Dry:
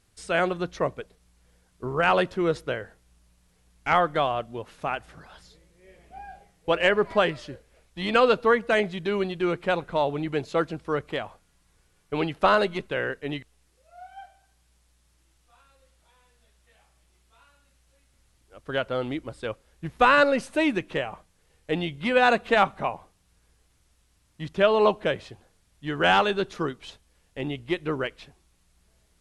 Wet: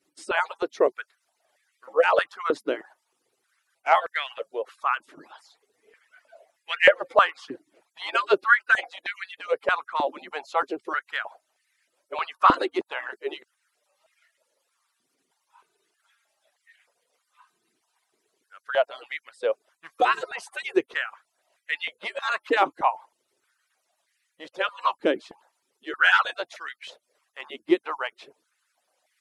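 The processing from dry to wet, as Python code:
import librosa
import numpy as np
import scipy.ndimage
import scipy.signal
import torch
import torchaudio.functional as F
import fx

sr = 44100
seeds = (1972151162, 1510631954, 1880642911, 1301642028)

y = fx.hpss_only(x, sr, part='percussive')
y = fx.filter_held_highpass(y, sr, hz=3.2, low_hz=310.0, high_hz=1900.0)
y = F.gain(torch.from_numpy(y), -1.0).numpy()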